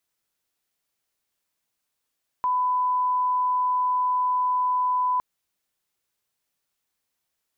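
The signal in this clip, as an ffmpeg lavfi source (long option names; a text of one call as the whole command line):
ffmpeg -f lavfi -i "sine=frequency=1000:duration=2.76:sample_rate=44100,volume=-1.94dB" out.wav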